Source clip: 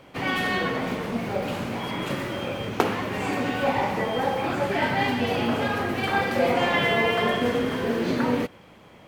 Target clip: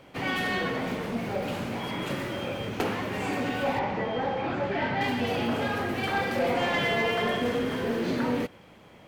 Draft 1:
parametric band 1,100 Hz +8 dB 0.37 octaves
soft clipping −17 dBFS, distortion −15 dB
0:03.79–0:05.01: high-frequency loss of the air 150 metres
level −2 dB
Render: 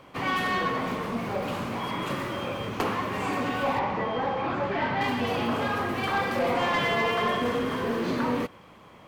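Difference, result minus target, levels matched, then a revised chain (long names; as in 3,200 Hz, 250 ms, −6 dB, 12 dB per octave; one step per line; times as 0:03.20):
1,000 Hz band +2.5 dB
parametric band 1,100 Hz −2 dB 0.37 octaves
soft clipping −17 dBFS, distortion −17 dB
0:03.79–0:05.01: high-frequency loss of the air 150 metres
level −2 dB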